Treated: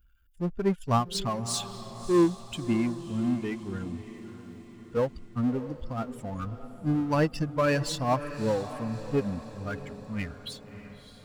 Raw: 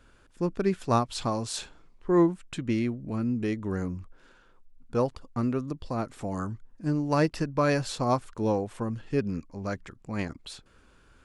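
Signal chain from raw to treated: expander on every frequency bin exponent 2; 3.39–4.97 s: high-pass 240 Hz 6 dB/octave; power-law waveshaper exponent 0.7; echo that smears into a reverb 619 ms, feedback 52%, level -12.5 dB

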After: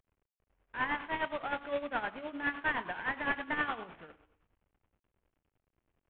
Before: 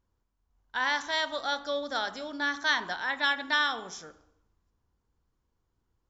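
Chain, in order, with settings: CVSD coder 16 kbps; tremolo 9.7 Hz, depth 67%

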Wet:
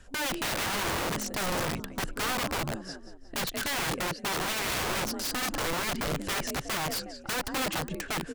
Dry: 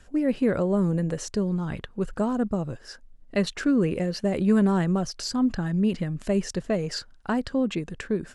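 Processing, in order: frequency-shifting echo 180 ms, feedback 45%, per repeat +41 Hz, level -14 dB; 3.79–4.36 s: gate -26 dBFS, range -10 dB; integer overflow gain 25.5 dB

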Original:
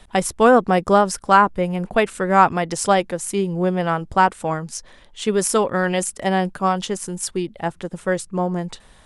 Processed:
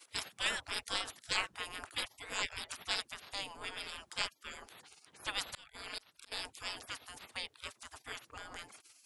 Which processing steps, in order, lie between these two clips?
spectral gate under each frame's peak -30 dB weak; 5.32–6.32 s: slow attack 383 ms; trim +3 dB

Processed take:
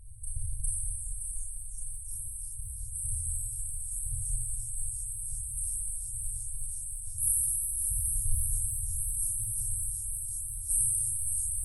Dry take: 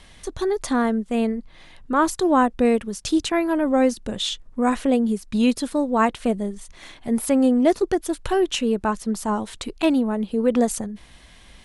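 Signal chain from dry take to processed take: 1.92–2.90 s: level held to a coarse grid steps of 13 dB; on a send: thinning echo 570 ms, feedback 78%, level -5.5 dB; on the sum: Schroeder reverb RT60 2.8 s, combs from 26 ms, DRR -8.5 dB; FFT band-reject 120–8000 Hz; modulated delay 343 ms, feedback 62%, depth 205 cents, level -21 dB

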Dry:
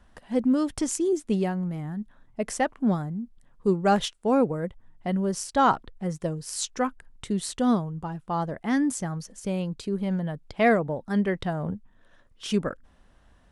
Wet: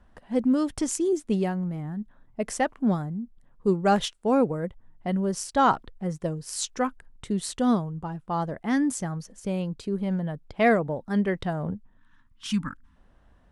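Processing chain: time-frequency box 11.97–12.96 s, 320–860 Hz -26 dB; tape noise reduction on one side only decoder only

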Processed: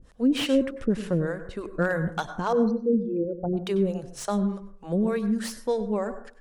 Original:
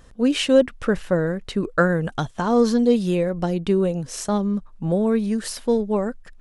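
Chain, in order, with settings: 2.53–3.57 s: resonances exaggerated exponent 3; vibrato 0.6 Hz 34 cents; harmonic tremolo 3.4 Hz, depth 100%, crossover 430 Hz; reverberation RT60 0.50 s, pre-delay 87 ms, DRR 11.5 dB; slew-rate limiter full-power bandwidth 140 Hz

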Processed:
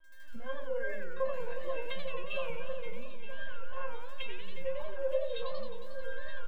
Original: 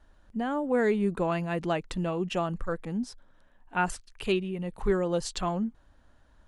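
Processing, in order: recorder AGC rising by 55 dB/s; reverb removal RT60 1.9 s; LPC vocoder at 8 kHz pitch kept; crackle 29 per s -39 dBFS; feedback comb 530 Hz, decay 0.29 s, harmonics all, mix 100%; compression, threshold -40 dBFS, peak gain reduction 11.5 dB; bass shelf 180 Hz -9 dB; delay 923 ms -13 dB; modulated delay 90 ms, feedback 76%, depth 199 cents, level -7 dB; trim +14 dB

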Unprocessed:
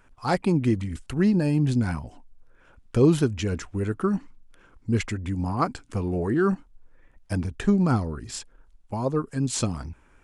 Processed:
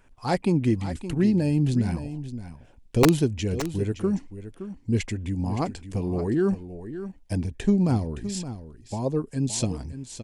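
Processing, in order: peaking EQ 1.3 kHz -6.5 dB 0.63 oct, from 1.21 s -14 dB; integer overflow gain 9.5 dB; delay 568 ms -12 dB

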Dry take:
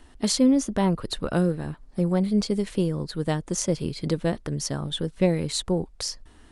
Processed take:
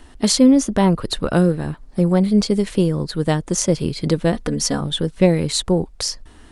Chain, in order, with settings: 4.33–4.81 s: comb 4.1 ms, depth 90%; trim +7 dB

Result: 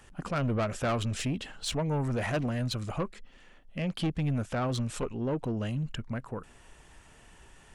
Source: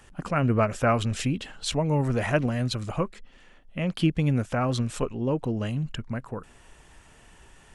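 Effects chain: saturation -22 dBFS, distortion -11 dB; trim -2 dB

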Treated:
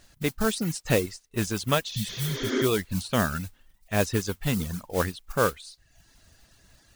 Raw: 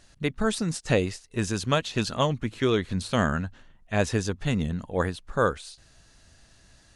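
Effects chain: modulation noise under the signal 12 dB; spectral replace 1.95–2.60 s, 230–7200 Hz both; reverb removal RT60 0.68 s

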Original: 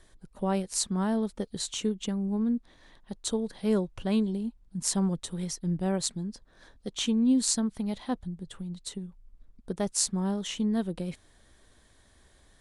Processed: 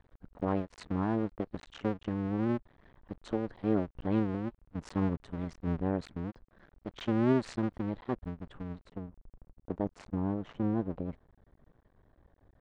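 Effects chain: cycle switcher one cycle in 2, muted; low-pass 1.7 kHz 12 dB/octave, from 8.83 s 1 kHz

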